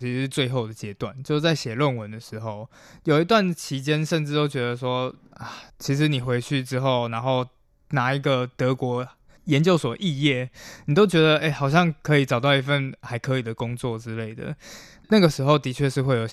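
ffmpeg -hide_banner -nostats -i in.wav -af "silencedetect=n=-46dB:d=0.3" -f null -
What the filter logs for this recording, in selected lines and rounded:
silence_start: 7.48
silence_end: 7.91 | silence_duration: 0.43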